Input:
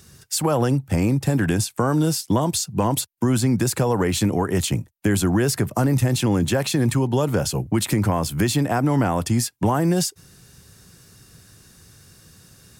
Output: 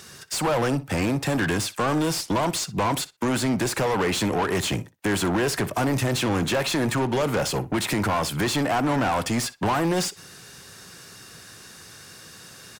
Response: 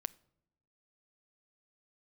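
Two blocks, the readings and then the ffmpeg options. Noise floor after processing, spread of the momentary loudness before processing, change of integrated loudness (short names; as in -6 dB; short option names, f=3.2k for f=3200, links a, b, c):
-47 dBFS, 3 LU, -3.0 dB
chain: -filter_complex "[0:a]asplit=2[a][b];[b]highpass=f=720:p=1,volume=24dB,asoftclip=type=tanh:threshold=-9.5dB[c];[a][c]amix=inputs=2:normalize=0,lowpass=f=3.9k:p=1,volume=-6dB,asplit=2[d][e];[e]adelay=61,lowpass=f=5k:p=1,volume=-16.5dB,asplit=2[f][g];[g]adelay=61,lowpass=f=5k:p=1,volume=0.16[h];[d][f][h]amix=inputs=3:normalize=0,volume=-6.5dB"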